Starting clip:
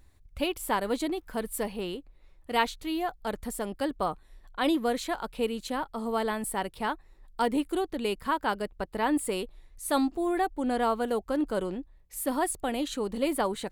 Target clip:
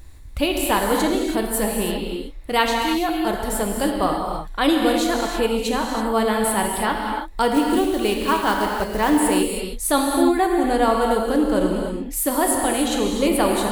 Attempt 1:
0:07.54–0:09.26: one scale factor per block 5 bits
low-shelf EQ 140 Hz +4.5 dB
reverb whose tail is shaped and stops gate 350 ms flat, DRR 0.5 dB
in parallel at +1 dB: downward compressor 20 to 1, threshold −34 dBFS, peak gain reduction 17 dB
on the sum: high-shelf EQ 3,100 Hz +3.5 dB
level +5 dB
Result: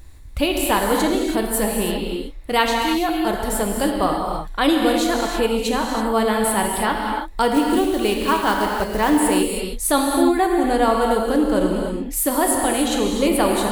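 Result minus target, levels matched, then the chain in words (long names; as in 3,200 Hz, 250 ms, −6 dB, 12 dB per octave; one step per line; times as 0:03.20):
downward compressor: peak gain reduction −5.5 dB
0:07.54–0:09.26: one scale factor per block 5 bits
low-shelf EQ 140 Hz +4.5 dB
reverb whose tail is shaped and stops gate 350 ms flat, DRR 0.5 dB
in parallel at +1 dB: downward compressor 20 to 1, threshold −40 dBFS, peak gain reduction 22.5 dB
on the sum: high-shelf EQ 3,100 Hz +3.5 dB
level +5 dB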